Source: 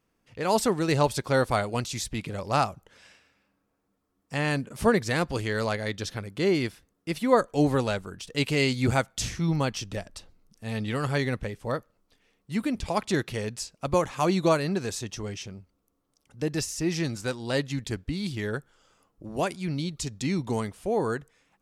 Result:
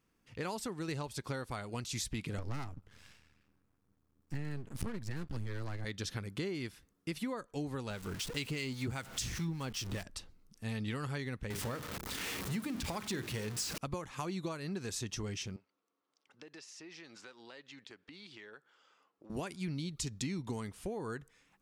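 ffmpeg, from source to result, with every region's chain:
-filter_complex "[0:a]asettb=1/sr,asplit=3[s0][s1][s2];[s0]atrim=end=2.384[s3];[s1]atrim=start=2.38:end=5.85,asetpts=PTS-STARTPTS,afade=t=in:d=0.004:c=qsin,afade=t=out:st=3.466:d=0.004:c=qsin,equalizer=f=90:t=o:w=1.9:g=14.5,aeval=exprs='max(val(0),0)':c=same[s4];[s2]atrim=start=5.846[s5];[s3][s4]acrossfade=d=0.004:c1=hsin:c2=qsin[s6];[s6][s5]acrossfade=d=0.004:c1=qsin:c2=hsin,asettb=1/sr,asplit=3[s7][s8][s9];[s7]atrim=end=7.904[s10];[s8]atrim=start=7.9:end=10.03,asetpts=PTS-STARTPTS,afade=t=in:d=0.004:c=qsin,afade=t=out:st=2.126:d=0.004:c=qsin,aeval=exprs='val(0)+0.5*0.02*sgn(val(0))':c=same,acrossover=split=1200[s11][s12];[s11]aeval=exprs='val(0)*(1-0.5/2+0.5/2*cos(2*PI*5*n/s))':c=same[s13];[s12]aeval=exprs='val(0)*(1-0.5/2-0.5/2*cos(2*PI*5*n/s))':c=same[s14];[s13][s14]amix=inputs=2:normalize=0[s15];[s9]atrim=start=10.026[s16];[s10][s15]acrossfade=d=0.004:c1=hsin:c2=qsin[s17];[s17][s16]acrossfade=d=0.004:c1=qsin:c2=hsin,asettb=1/sr,asplit=3[s18][s19][s20];[s18]atrim=end=11.504[s21];[s19]atrim=start=11.5:end=13.78,asetpts=PTS-STARTPTS,afade=t=in:d=0.004:c=qsin,afade=t=out:st=2.276:d=0.004:c=qsin,aeval=exprs='val(0)+0.5*0.0316*sgn(val(0))':c=same,highpass=55,bandreject=f=50:t=h:w=6,bandreject=f=100:t=h:w=6,bandreject=f=150:t=h:w=6,bandreject=f=200:t=h:w=6,bandreject=f=250:t=h:w=6,bandreject=f=300:t=h:w=6,bandreject=f=350:t=h:w=6,bandreject=f=400:t=h:w=6,bandreject=f=450:t=h:w=6,bandreject=f=500:t=h:w=6[s22];[s20]atrim=start=13.776[s23];[s21][s22]acrossfade=d=0.004:c1=hsin:c2=qsin[s24];[s24][s23]acrossfade=d=0.004:c1=qsin:c2=hsin,asettb=1/sr,asplit=3[s25][s26][s27];[s25]atrim=end=15.564[s28];[s26]atrim=start=15.56:end=19.3,asetpts=PTS-STARTPTS,afade=t=in:d=0.004:c=qsin,afade=t=out:st=3.736:d=0.004:c=qsin,highpass=470,lowpass=4100,acompressor=threshold=0.00398:ratio=4:attack=3.2:release=140:knee=1:detection=peak[s29];[s27]atrim=start=19.296[s30];[s28][s29]acrossfade=d=0.004:c1=hsin:c2=qsin[s31];[s31][s30]acrossfade=d=0.004:c1=qsin:c2=hsin,acompressor=threshold=0.0251:ratio=12,equalizer=f=620:w=1.6:g=-6,volume=0.841"

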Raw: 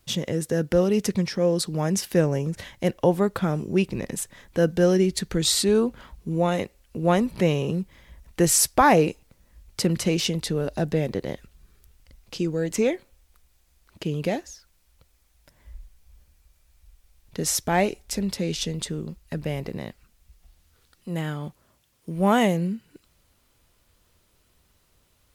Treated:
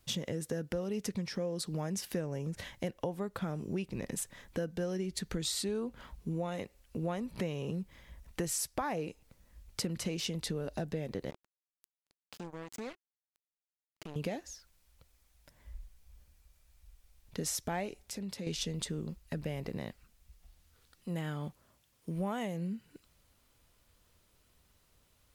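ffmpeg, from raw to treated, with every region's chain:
-filter_complex "[0:a]asettb=1/sr,asplit=3[s0][s1][s2];[s0]atrim=end=11.304[s3];[s1]atrim=start=11.3:end=14.16,asetpts=PTS-STARTPTS,afade=t=in:d=0.004:c=qsin,afade=t=out:st=2.856:d=0.004:c=qsin,acompressor=threshold=0.00631:ratio=2.5:attack=3.2:release=140:knee=1:detection=peak,acrusher=bits=5:mix=0:aa=0.5[s4];[s2]atrim=start=14.156[s5];[s3][s4]acrossfade=d=0.004:c1=hsin:c2=qsin[s6];[s6][s5]acrossfade=d=0.004:c1=qsin:c2=hsin,asettb=1/sr,asplit=3[s7][s8][s9];[s7]atrim=end=18.034[s10];[s8]atrim=start=18.03:end=18.47,asetpts=PTS-STARTPTS,afade=t=in:d=0.004:c=qsin,afade=t=out:st=0.436:d=0.004:c=qsin,highpass=83,acompressor=threshold=0.0112:ratio=2:attack=3.2:release=140:knee=1:detection=peak[s11];[s9]atrim=start=18.466[s12];[s10][s11]acrossfade=d=0.004:c1=hsin:c2=qsin[s13];[s13][s12]acrossfade=d=0.004:c1=qsin:c2=hsin,equalizer=f=360:w=7.6:g=-3,acompressor=threshold=0.0398:ratio=6,volume=0.596"

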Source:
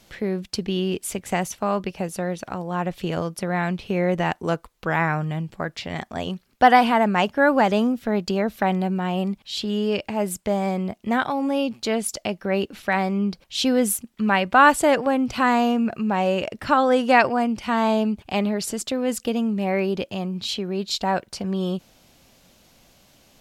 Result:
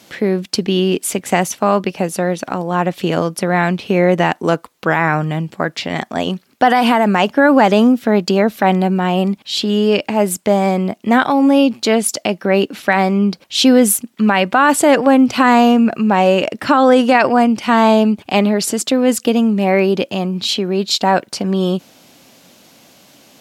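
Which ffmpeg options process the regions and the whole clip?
-filter_complex "[0:a]asettb=1/sr,asplit=3[s0][s1][s2];[s0]atrim=end=6.704[s3];[s1]atrim=start=6.7:end=7.19,asetpts=PTS-STARTPTS,afade=t=in:d=0.004:c=qsin,afade=t=out:st=0.486:d=0.004:c=qsin,highshelf=f=6100:g=5,acompressor=threshold=0.141:ratio=6:attack=3.2:release=140:knee=1:detection=peak[s4];[s2]atrim=start=7.186[s5];[s3][s4]acrossfade=d=0.004:c1=hsin:c2=qsin[s6];[s6][s5]acrossfade=d=0.004:c1=qsin:c2=hsin,highpass=160,equalizer=f=280:w=4.5:g=4,alimiter=level_in=3.35:limit=0.891:release=50:level=0:latency=1,volume=0.891"

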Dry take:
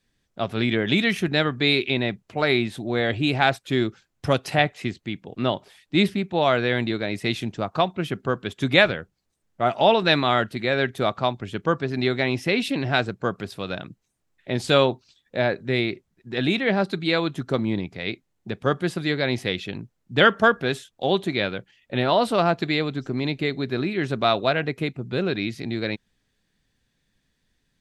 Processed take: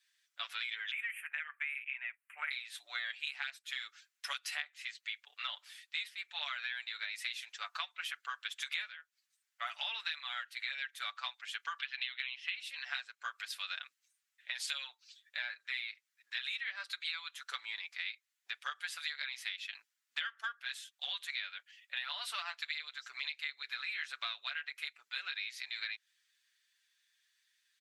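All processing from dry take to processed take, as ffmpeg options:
-filter_complex "[0:a]asettb=1/sr,asplit=3[s0][s1][s2];[s0]atrim=end=0.914[s3];[s1]atrim=start=0.91:end=2.51,asetpts=PTS-STARTPTS,afade=t=in:d=0.004:c=qsin,afade=t=out:st=1.596:d=0.004:c=qsin,asuperstop=centerf=4900:order=8:qfactor=0.82,equalizer=f=290:w=0.49:g=-10[s4];[s2]atrim=start=2.506[s5];[s3][s4]acrossfade=d=0.004:c1=hsin:c2=qsin[s6];[s6][s5]acrossfade=d=0.004:c1=qsin:c2=hsin,asettb=1/sr,asplit=3[s7][s8][s9];[s7]atrim=end=11.794[s10];[s8]atrim=start=11.79:end=12.55,asetpts=PTS-STARTPTS,afade=t=in:d=0.004:c=qsin,afade=t=out:st=0.756:d=0.004:c=qsin,equalizer=f=350:t=o:w=0.49:g=-14.5,acompressor=mode=upward:threshold=0.0178:ratio=2.5:attack=3.2:release=140:knee=2.83:detection=peak,lowpass=f=3100:t=q:w=5[s11];[s9]atrim=start=12.546[s12];[s10][s11]acrossfade=d=0.004:c1=hsin:c2=qsin[s13];[s13][s12]acrossfade=d=0.004:c1=qsin:c2=hsin,highpass=f=1500:w=0.5412,highpass=f=1500:w=1.3066,aecho=1:1:6.9:0.75,acompressor=threshold=0.02:ratio=16,volume=0.841"

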